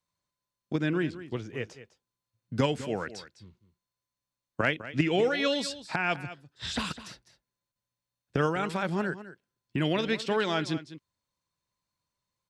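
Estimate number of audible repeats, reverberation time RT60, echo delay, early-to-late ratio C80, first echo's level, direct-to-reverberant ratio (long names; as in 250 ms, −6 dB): 1, no reverb audible, 204 ms, no reverb audible, −14.5 dB, no reverb audible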